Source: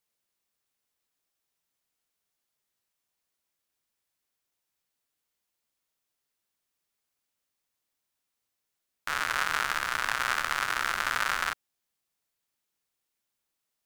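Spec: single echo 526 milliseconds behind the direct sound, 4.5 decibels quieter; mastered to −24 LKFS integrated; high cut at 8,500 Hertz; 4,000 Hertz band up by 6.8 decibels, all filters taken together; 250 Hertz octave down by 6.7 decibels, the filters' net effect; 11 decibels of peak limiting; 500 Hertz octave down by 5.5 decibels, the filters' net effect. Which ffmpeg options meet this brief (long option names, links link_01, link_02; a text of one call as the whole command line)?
ffmpeg -i in.wav -af "lowpass=8500,equalizer=frequency=250:width_type=o:gain=-7.5,equalizer=frequency=500:width_type=o:gain=-6,equalizer=frequency=4000:width_type=o:gain=9,alimiter=limit=-18.5dB:level=0:latency=1,aecho=1:1:526:0.596,volume=9.5dB" out.wav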